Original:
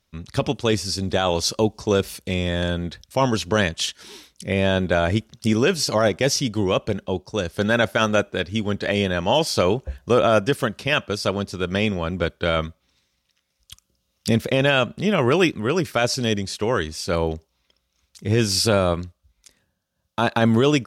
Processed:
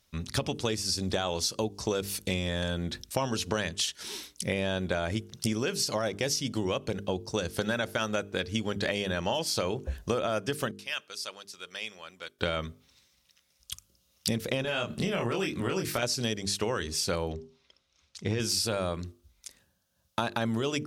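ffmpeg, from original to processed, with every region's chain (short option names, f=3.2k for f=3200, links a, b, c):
-filter_complex "[0:a]asettb=1/sr,asplit=3[a][b][c];[a]atrim=end=10.714[d];[b]atrim=start=10.71:end=12.39,asetpts=PTS-STARTPTS,afade=t=in:d=0.004:c=qsin,afade=t=out:st=1.676:d=0.004:c=qsin,lowpass=f=2.1k:p=1,aderivative[e];[c]atrim=start=12.386[f];[d][e]acrossfade=d=0.004:c1=hsin:c2=qsin[g];[g][f]acrossfade=d=0.004:c1=qsin:c2=hsin,asettb=1/sr,asplit=3[h][i][j];[h]atrim=end=14.624[k];[i]atrim=start=14.62:end=16.03,asetpts=PTS-STARTPTS,afade=t=in:d=0.004:c=qsin,afade=t=out:st=1.406:d=0.004:c=qsin,acompressor=threshold=-24dB:ratio=3:attack=3.2:release=140:knee=1:detection=peak,asplit=2[l][m];[m]adelay=26,volume=-3dB[n];[l][n]amix=inputs=2:normalize=0,atrim=end_sample=62181[o];[j]atrim=start=16.026[p];[k][o]acrossfade=d=0.004:c1=hsin:c2=qsin[q];[q][p]acrossfade=d=0.004:c1=qsin:c2=hsin,asettb=1/sr,asplit=3[r][s][t];[r]atrim=end=17.324[u];[s]atrim=start=17.32:end=18.4,asetpts=PTS-STARTPTS,afade=t=in:d=0.004:c=qsin,afade=t=out:st=1.076:d=0.004:c=qsin,lowpass=5.5k,bandreject=f=60:t=h:w=6,bandreject=f=120:t=h:w=6,bandreject=f=180:t=h:w=6,bandreject=f=240:t=h:w=6[v];[t]atrim=start=18.396[w];[u][v]acrossfade=d=0.004:c1=hsin:c2=qsin[x];[x][w]acrossfade=d=0.004:c1=qsin:c2=hsin,highshelf=f=4.3k:g=7,bandreject=f=50:t=h:w=6,bandreject=f=100:t=h:w=6,bandreject=f=150:t=h:w=6,bandreject=f=200:t=h:w=6,bandreject=f=250:t=h:w=6,bandreject=f=300:t=h:w=6,bandreject=f=350:t=h:w=6,bandreject=f=400:t=h:w=6,bandreject=f=450:t=h:w=6,acompressor=threshold=-26dB:ratio=10"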